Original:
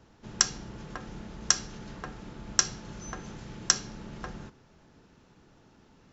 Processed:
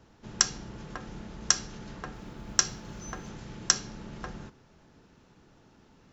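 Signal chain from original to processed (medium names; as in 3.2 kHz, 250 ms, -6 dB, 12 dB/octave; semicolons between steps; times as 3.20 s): 2.13–3.29 s: companded quantiser 8-bit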